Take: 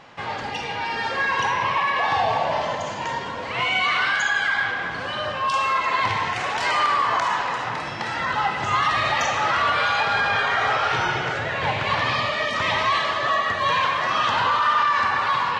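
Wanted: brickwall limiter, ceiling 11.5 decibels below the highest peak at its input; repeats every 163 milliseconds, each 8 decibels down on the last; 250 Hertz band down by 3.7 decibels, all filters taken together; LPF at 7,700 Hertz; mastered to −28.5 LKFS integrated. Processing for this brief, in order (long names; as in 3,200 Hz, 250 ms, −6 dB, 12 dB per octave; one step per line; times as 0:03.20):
low-pass filter 7,700 Hz
parametric band 250 Hz −5.5 dB
brickwall limiter −21.5 dBFS
repeating echo 163 ms, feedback 40%, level −8 dB
level −1 dB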